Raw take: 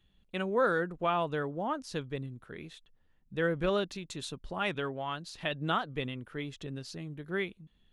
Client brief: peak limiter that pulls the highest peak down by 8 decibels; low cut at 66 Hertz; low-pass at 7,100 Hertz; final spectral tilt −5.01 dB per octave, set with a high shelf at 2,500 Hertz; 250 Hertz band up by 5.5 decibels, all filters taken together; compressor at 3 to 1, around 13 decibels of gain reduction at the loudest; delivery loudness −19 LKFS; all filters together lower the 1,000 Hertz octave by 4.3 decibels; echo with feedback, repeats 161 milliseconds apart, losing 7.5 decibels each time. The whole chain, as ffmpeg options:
ffmpeg -i in.wav -af "highpass=66,lowpass=7100,equalizer=frequency=250:width_type=o:gain=8.5,equalizer=frequency=1000:width_type=o:gain=-8.5,highshelf=frequency=2500:gain=8.5,acompressor=threshold=-41dB:ratio=3,alimiter=level_in=9.5dB:limit=-24dB:level=0:latency=1,volume=-9.5dB,aecho=1:1:161|322|483|644|805:0.422|0.177|0.0744|0.0312|0.0131,volume=24dB" out.wav

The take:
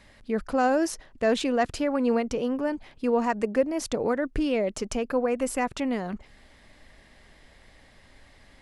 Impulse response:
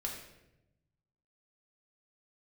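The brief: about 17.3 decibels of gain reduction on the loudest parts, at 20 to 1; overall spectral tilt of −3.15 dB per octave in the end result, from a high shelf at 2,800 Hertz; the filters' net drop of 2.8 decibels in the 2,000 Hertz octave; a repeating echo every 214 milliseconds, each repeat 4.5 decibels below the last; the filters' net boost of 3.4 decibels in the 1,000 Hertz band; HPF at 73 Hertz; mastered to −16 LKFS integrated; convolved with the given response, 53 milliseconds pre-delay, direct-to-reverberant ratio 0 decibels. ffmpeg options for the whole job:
-filter_complex "[0:a]highpass=73,equalizer=frequency=1000:width_type=o:gain=6.5,equalizer=frequency=2000:width_type=o:gain=-3,highshelf=frequency=2800:gain=-8.5,acompressor=threshold=-34dB:ratio=20,aecho=1:1:214|428|642|856|1070|1284|1498|1712|1926:0.596|0.357|0.214|0.129|0.0772|0.0463|0.0278|0.0167|0.01,asplit=2[link_01][link_02];[1:a]atrim=start_sample=2205,adelay=53[link_03];[link_02][link_03]afir=irnorm=-1:irlink=0,volume=-1dB[link_04];[link_01][link_04]amix=inputs=2:normalize=0,volume=18.5dB"

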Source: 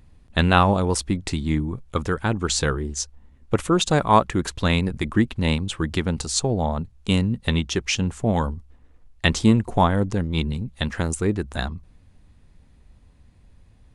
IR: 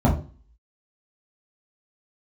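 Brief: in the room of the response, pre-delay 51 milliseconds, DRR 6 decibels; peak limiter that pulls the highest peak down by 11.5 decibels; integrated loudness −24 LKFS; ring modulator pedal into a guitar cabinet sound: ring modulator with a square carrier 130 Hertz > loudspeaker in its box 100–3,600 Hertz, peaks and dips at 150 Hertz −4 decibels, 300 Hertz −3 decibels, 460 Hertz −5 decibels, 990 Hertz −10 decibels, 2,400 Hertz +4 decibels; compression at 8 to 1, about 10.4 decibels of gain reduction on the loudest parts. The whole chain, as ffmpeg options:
-filter_complex "[0:a]acompressor=threshold=-21dB:ratio=8,alimiter=limit=-19.5dB:level=0:latency=1,asplit=2[link_01][link_02];[1:a]atrim=start_sample=2205,adelay=51[link_03];[link_02][link_03]afir=irnorm=-1:irlink=0,volume=-23dB[link_04];[link_01][link_04]amix=inputs=2:normalize=0,aeval=exprs='val(0)*sgn(sin(2*PI*130*n/s))':channel_layout=same,highpass=100,equalizer=frequency=150:width_type=q:width=4:gain=-4,equalizer=frequency=300:width_type=q:width=4:gain=-3,equalizer=frequency=460:width_type=q:width=4:gain=-5,equalizer=frequency=990:width_type=q:width=4:gain=-10,equalizer=frequency=2400:width_type=q:width=4:gain=4,lowpass=frequency=3600:width=0.5412,lowpass=frequency=3600:width=1.3066,volume=-0.5dB"

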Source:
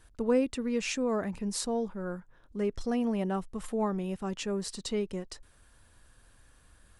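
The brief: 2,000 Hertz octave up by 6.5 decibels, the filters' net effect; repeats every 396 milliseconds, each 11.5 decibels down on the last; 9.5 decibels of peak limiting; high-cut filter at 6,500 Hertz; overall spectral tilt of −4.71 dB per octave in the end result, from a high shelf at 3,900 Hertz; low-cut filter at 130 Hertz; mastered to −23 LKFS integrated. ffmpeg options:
ffmpeg -i in.wav -af "highpass=130,lowpass=6500,equalizer=frequency=2000:width_type=o:gain=7.5,highshelf=frequency=3900:gain=4,alimiter=level_in=1.5dB:limit=-24dB:level=0:latency=1,volume=-1.5dB,aecho=1:1:396|792|1188:0.266|0.0718|0.0194,volume=11.5dB" out.wav

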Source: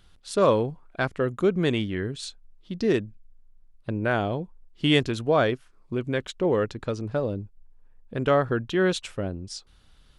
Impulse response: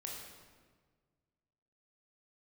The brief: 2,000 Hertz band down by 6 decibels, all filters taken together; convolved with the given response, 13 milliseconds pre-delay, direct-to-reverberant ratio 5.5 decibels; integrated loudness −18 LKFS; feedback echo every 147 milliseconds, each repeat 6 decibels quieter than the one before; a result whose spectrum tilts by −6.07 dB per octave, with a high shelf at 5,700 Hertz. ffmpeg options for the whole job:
-filter_complex "[0:a]equalizer=frequency=2000:width_type=o:gain=-7.5,highshelf=frequency=5700:gain=-8.5,aecho=1:1:147|294|441|588|735|882:0.501|0.251|0.125|0.0626|0.0313|0.0157,asplit=2[link_01][link_02];[1:a]atrim=start_sample=2205,adelay=13[link_03];[link_02][link_03]afir=irnorm=-1:irlink=0,volume=-4dB[link_04];[link_01][link_04]amix=inputs=2:normalize=0,volume=7dB"

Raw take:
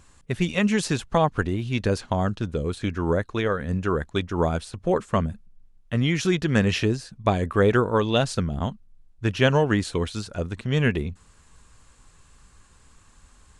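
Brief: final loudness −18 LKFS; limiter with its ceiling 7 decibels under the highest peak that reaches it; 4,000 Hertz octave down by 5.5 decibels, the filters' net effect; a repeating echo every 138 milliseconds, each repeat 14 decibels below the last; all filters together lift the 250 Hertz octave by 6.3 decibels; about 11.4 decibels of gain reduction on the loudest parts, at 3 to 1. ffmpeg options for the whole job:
ffmpeg -i in.wav -af "equalizer=frequency=250:width_type=o:gain=8.5,equalizer=frequency=4000:width_type=o:gain=-7.5,acompressor=threshold=-27dB:ratio=3,alimiter=limit=-20.5dB:level=0:latency=1,aecho=1:1:138|276:0.2|0.0399,volume=13.5dB" out.wav

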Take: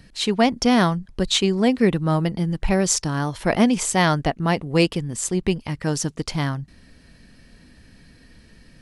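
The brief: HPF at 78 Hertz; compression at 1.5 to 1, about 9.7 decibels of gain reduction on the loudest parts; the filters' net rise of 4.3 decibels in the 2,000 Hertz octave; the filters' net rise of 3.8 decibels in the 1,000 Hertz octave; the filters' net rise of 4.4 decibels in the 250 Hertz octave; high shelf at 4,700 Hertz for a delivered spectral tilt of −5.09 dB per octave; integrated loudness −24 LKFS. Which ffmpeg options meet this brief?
ffmpeg -i in.wav -af "highpass=78,equalizer=frequency=250:width_type=o:gain=5.5,equalizer=frequency=1000:width_type=o:gain=4,equalizer=frequency=2000:width_type=o:gain=4.5,highshelf=frequency=4700:gain=-3.5,acompressor=threshold=-36dB:ratio=1.5,volume=2.5dB" out.wav

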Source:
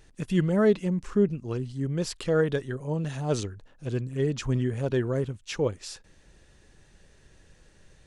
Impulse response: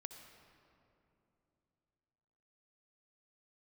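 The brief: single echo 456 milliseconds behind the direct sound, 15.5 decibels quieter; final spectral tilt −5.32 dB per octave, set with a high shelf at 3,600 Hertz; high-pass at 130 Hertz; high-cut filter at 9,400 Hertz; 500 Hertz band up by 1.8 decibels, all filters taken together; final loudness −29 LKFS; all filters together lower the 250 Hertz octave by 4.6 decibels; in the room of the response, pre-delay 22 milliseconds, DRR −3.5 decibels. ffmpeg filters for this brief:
-filter_complex "[0:a]highpass=130,lowpass=9400,equalizer=frequency=250:width_type=o:gain=-7.5,equalizer=frequency=500:width_type=o:gain=4.5,highshelf=frequency=3600:gain=7,aecho=1:1:456:0.168,asplit=2[link_01][link_02];[1:a]atrim=start_sample=2205,adelay=22[link_03];[link_02][link_03]afir=irnorm=-1:irlink=0,volume=8dB[link_04];[link_01][link_04]amix=inputs=2:normalize=0,volume=-5.5dB"

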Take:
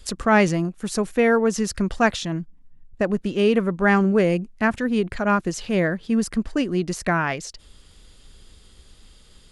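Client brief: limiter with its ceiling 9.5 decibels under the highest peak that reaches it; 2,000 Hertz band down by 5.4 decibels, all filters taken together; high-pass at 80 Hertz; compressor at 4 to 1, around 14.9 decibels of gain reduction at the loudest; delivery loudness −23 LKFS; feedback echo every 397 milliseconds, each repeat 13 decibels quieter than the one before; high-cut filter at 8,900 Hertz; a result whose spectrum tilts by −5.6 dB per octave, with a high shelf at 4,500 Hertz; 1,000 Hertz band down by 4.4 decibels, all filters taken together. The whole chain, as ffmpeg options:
ffmpeg -i in.wav -af "highpass=80,lowpass=8900,equalizer=frequency=1000:width_type=o:gain=-4.5,equalizer=frequency=2000:width_type=o:gain=-4,highshelf=frequency=4500:gain=-7.5,acompressor=threshold=-34dB:ratio=4,alimiter=level_in=6.5dB:limit=-24dB:level=0:latency=1,volume=-6.5dB,aecho=1:1:397|794|1191:0.224|0.0493|0.0108,volume=16.5dB" out.wav

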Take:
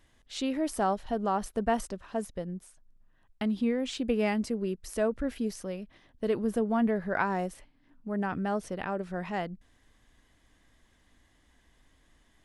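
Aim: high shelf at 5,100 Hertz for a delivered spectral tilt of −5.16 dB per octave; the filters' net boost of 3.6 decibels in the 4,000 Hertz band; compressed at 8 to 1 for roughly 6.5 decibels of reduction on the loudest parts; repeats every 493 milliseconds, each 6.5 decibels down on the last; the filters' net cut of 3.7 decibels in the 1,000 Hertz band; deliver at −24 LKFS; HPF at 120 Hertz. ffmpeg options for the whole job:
ffmpeg -i in.wav -af "highpass=120,equalizer=frequency=1000:width_type=o:gain=-5.5,equalizer=frequency=4000:width_type=o:gain=7.5,highshelf=frequency=5100:gain=-6,acompressor=threshold=-30dB:ratio=8,aecho=1:1:493|986|1479|1972|2465|2958:0.473|0.222|0.105|0.0491|0.0231|0.0109,volume=12dB" out.wav

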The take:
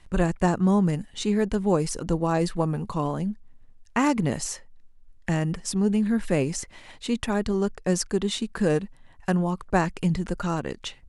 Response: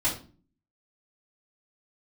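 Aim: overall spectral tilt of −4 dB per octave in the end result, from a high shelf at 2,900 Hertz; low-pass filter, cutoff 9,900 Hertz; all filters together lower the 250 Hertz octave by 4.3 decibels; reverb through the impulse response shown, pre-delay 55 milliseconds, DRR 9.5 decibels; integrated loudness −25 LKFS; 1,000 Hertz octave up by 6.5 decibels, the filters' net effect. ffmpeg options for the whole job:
-filter_complex "[0:a]lowpass=9900,equalizer=frequency=250:width_type=o:gain=-7,equalizer=frequency=1000:width_type=o:gain=7.5,highshelf=frequency=2900:gain=8,asplit=2[link_01][link_02];[1:a]atrim=start_sample=2205,adelay=55[link_03];[link_02][link_03]afir=irnorm=-1:irlink=0,volume=-19dB[link_04];[link_01][link_04]amix=inputs=2:normalize=0"

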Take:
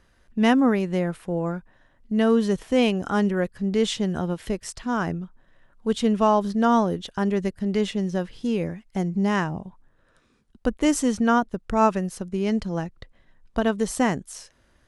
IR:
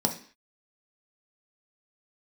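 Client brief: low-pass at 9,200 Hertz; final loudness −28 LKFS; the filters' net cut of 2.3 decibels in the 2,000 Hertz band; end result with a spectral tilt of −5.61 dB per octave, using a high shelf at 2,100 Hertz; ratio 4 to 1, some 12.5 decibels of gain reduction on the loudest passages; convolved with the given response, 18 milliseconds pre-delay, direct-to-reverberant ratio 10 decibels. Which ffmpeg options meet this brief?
-filter_complex "[0:a]lowpass=9200,equalizer=frequency=2000:width_type=o:gain=-7,highshelf=frequency=2100:gain=7,acompressor=threshold=-30dB:ratio=4,asplit=2[link_01][link_02];[1:a]atrim=start_sample=2205,adelay=18[link_03];[link_02][link_03]afir=irnorm=-1:irlink=0,volume=-19dB[link_04];[link_01][link_04]amix=inputs=2:normalize=0,volume=3dB"

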